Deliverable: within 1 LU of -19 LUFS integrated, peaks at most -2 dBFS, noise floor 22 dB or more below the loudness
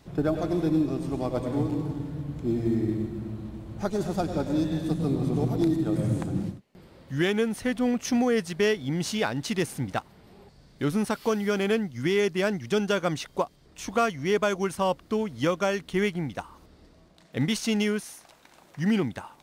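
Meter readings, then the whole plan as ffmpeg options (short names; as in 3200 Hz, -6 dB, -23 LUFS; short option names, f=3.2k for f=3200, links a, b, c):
loudness -27.5 LUFS; peak -11.5 dBFS; loudness target -19.0 LUFS
-> -af "volume=8.5dB"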